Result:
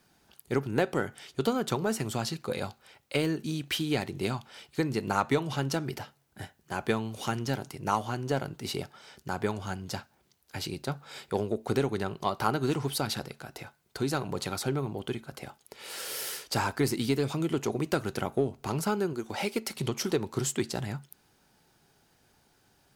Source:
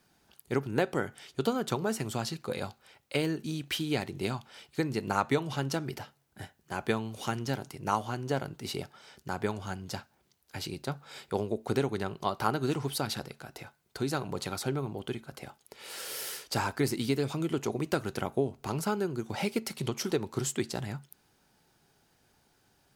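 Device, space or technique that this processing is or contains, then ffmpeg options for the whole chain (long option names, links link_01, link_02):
parallel distortion: -filter_complex "[0:a]asettb=1/sr,asplit=3[link_01][link_02][link_03];[link_01]atrim=end=19.134[link_04];[link_02]atrim=start=19.13:end=19.76,asetpts=PTS-STARTPTS,afade=type=in:duration=0.004:curve=qsin,afade=type=out:start_time=0.626:duration=0.004:curve=qsin,equalizer=frequency=140:width=1.7:gain=-12.5[link_05];[link_03]atrim=start=19.756[link_06];[link_04][link_05]acrossfade=duration=0.004:curve1=hsin:curve2=qsin[link_07];[link_07][link_06]acrossfade=duration=0.004:curve1=qsin:curve2=hsin,asplit=2[link_08][link_09];[link_09]asoftclip=type=hard:threshold=-27dB,volume=-11dB[link_10];[link_08][link_10]amix=inputs=2:normalize=0"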